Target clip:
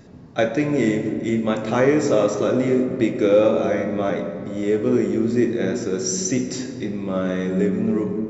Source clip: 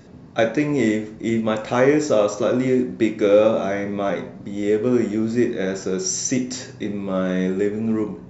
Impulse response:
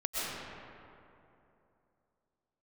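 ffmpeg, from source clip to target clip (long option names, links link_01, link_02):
-filter_complex "[0:a]asplit=2[link_01][link_02];[1:a]atrim=start_sample=2205,lowshelf=frequency=420:gain=9[link_03];[link_02][link_03]afir=irnorm=-1:irlink=0,volume=-16.5dB[link_04];[link_01][link_04]amix=inputs=2:normalize=0,volume=-2.5dB"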